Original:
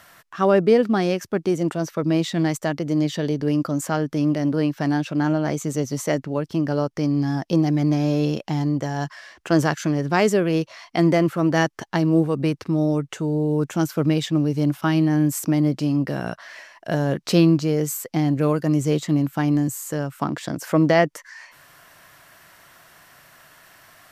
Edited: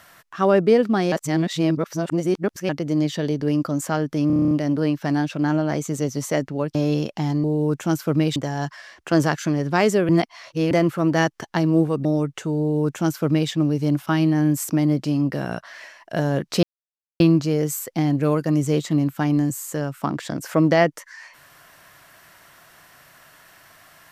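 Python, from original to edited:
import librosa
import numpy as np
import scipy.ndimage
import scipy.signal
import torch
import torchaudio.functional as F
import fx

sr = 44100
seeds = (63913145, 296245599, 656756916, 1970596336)

y = fx.edit(x, sr, fx.reverse_span(start_s=1.12, length_s=1.57),
    fx.stutter(start_s=4.27, slice_s=0.03, count=9),
    fx.cut(start_s=6.51, length_s=1.55),
    fx.reverse_span(start_s=10.48, length_s=0.62),
    fx.cut(start_s=12.44, length_s=0.36),
    fx.duplicate(start_s=13.34, length_s=0.92, to_s=8.75),
    fx.insert_silence(at_s=17.38, length_s=0.57), tone=tone)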